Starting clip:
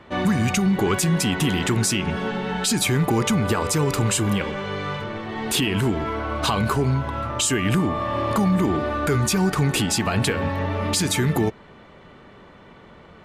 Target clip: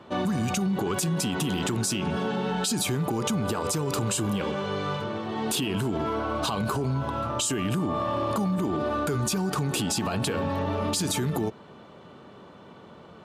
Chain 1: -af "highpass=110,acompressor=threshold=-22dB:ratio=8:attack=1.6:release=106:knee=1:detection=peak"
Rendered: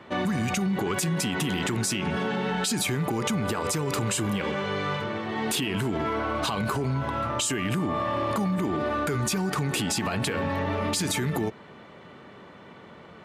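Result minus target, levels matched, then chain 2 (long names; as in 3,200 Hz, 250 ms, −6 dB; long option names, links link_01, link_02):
2,000 Hz band +4.0 dB
-af "highpass=110,equalizer=frequency=2000:width=2.4:gain=-10,acompressor=threshold=-22dB:ratio=8:attack=1.6:release=106:knee=1:detection=peak"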